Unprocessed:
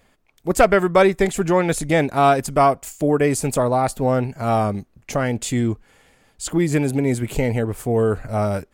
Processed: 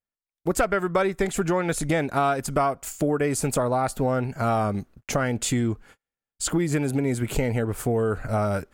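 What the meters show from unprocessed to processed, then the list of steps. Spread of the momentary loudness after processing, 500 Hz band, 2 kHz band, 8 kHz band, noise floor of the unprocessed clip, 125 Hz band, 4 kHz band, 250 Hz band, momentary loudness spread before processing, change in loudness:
4 LU, −6.5 dB, −5.0 dB, −1.5 dB, −61 dBFS, −4.0 dB, −3.0 dB, −4.5 dB, 9 LU, −5.5 dB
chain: noise gate −45 dBFS, range −41 dB
parametric band 1,400 Hz +5.5 dB 0.39 octaves
downward compressor 4 to 1, threshold −23 dBFS, peak gain reduction 13.5 dB
level +2 dB

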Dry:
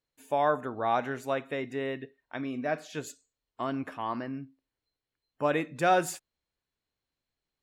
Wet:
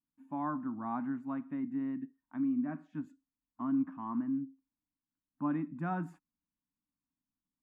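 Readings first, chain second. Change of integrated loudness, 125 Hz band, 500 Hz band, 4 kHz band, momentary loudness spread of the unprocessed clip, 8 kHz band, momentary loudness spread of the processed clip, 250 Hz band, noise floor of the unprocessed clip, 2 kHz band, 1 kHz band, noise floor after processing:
−5.5 dB, −2.5 dB, −19.5 dB, below −25 dB, 14 LU, below −30 dB, 11 LU, +3.0 dB, below −85 dBFS, −15.0 dB, −11.0 dB, below −85 dBFS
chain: drawn EQ curve 130 Hz 0 dB, 180 Hz +12 dB, 290 Hz +13 dB, 440 Hz −22 dB, 1,000 Hz +3 dB, 4,400 Hz −27 dB
level −8.5 dB

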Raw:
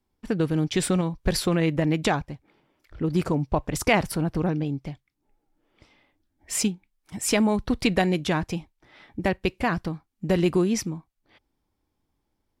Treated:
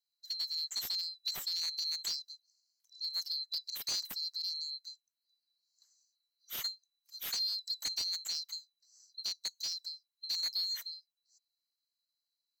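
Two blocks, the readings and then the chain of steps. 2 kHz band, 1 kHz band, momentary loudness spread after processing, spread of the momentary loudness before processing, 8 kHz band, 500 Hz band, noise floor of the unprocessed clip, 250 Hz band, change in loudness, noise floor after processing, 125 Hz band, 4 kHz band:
−22.5 dB, −29.0 dB, 12 LU, 12 LU, −9.5 dB, −39.5 dB, −77 dBFS, below −40 dB, −10.5 dB, below −85 dBFS, below −40 dB, +2.5 dB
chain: neighbouring bands swapped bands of 4,000 Hz
first difference
slew-rate limiting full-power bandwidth 380 Hz
level −9 dB

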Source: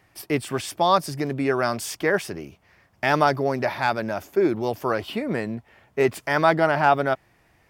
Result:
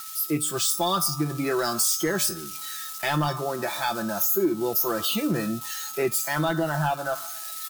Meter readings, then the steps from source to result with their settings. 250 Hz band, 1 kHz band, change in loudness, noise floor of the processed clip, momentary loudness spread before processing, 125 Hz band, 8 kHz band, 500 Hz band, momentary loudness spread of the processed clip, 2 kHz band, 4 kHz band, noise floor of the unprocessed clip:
−1.0 dB, −6.0 dB, −2.0 dB, −37 dBFS, 10 LU, 0.0 dB, +12.0 dB, −5.5 dB, 8 LU, −5.5 dB, +4.5 dB, −62 dBFS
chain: spike at every zero crossing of −19.5 dBFS
steady tone 1,300 Hz −25 dBFS
comb filter 5.9 ms, depth 57%
automatic gain control gain up to 6 dB
low-shelf EQ 170 Hz −7.5 dB
tuned comb filter 150 Hz, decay 0.72 s, harmonics all, mix 70%
on a send: delay with a band-pass on its return 125 ms, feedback 55%, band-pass 1,100 Hz, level −20 dB
on the sum: sine wavefolder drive 7 dB, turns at −5.5 dBFS
flat-topped bell 1,100 Hz −8.5 dB 2.8 octaves
noise reduction from a noise print of the clip's start 11 dB
downward compressor 2.5 to 1, threshold −22 dBFS, peak gain reduction 7.5 dB

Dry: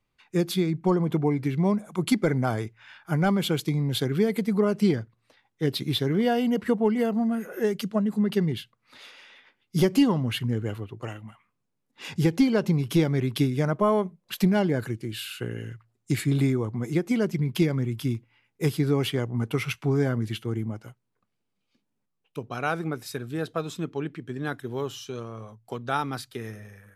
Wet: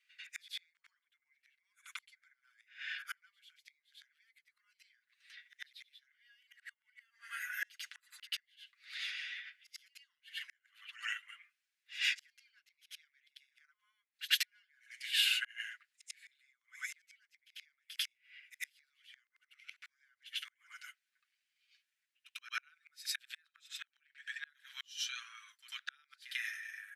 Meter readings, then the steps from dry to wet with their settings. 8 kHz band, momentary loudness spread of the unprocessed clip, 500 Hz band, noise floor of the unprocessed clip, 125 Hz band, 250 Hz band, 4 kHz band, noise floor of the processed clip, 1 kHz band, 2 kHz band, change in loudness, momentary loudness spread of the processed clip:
−6.5 dB, 13 LU, below −40 dB, −78 dBFS, below −40 dB, below −40 dB, −3.0 dB, below −85 dBFS, −25.0 dB, −5.0 dB, −13.5 dB, 22 LU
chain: low-pass filter 3,100 Hz 6 dB per octave
comb filter 6.7 ms, depth 62%
gate with flip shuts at −19 dBFS, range −38 dB
Butterworth high-pass 1,600 Hz 48 dB per octave
backwards echo 95 ms −15 dB
level +8.5 dB

